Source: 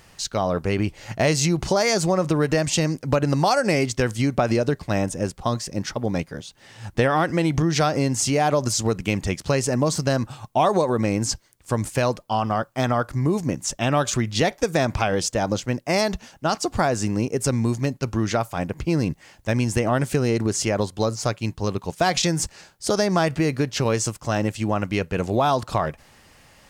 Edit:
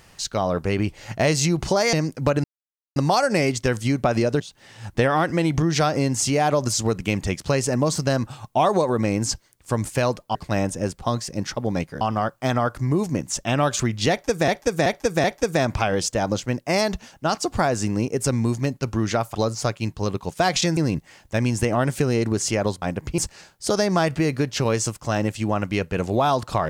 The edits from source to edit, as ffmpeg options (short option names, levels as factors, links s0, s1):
-filter_complex "[0:a]asplit=13[s0][s1][s2][s3][s4][s5][s6][s7][s8][s9][s10][s11][s12];[s0]atrim=end=1.932[s13];[s1]atrim=start=2.788:end=3.3,asetpts=PTS-STARTPTS,afade=t=out:st=0.508:d=0.004:c=hsin,apad=pad_dur=0.52[s14];[s2]atrim=start=3.3:end=4.742,asetpts=PTS-STARTPTS,afade=t=in:d=0.004:c=hsin[s15];[s3]atrim=start=6.398:end=12.352[s16];[s4]atrim=start=4.738:end=6.402[s17];[s5]atrim=start=12.348:end=14.822[s18];[s6]atrim=start=14.438:end=14.822[s19];[s7]atrim=start=14.438:end=14.822[s20];[s8]atrim=start=14.438:end=18.552[s21];[s9]atrim=start=20.958:end=22.382[s22];[s10]atrim=start=18.908:end=20.962[s23];[s11]atrim=start=18.548:end=18.912[s24];[s12]atrim=start=22.378[s25];[s14][s15]concat=n=2:v=0:a=1[s26];[s13][s26]acrossfade=d=0.004:c1=hsin:c2=hsin[s27];[s27][s16]acrossfade=d=0.004:c1=hsin:c2=hsin[s28];[s28][s17]acrossfade=d=0.004:c1=hsin:c2=hsin[s29];[s29][s18]acrossfade=d=0.004:c1=hsin:c2=hsin[s30];[s30][s19]acrossfade=d=0.004:c1=hsin:c2=hsin[s31];[s31][s20]acrossfade=d=0.004:c1=hsin:c2=hsin[s32];[s32][s21]acrossfade=d=0.004:c1=hsin:c2=hsin[s33];[s33][s22]acrossfade=d=0.004:c1=hsin:c2=hsin[s34];[s34][s23]acrossfade=d=0.004:c1=hsin:c2=hsin[s35];[s35][s24]acrossfade=d=0.004:c1=hsin:c2=hsin[s36];[s36][s25]acrossfade=d=0.004:c1=hsin:c2=hsin"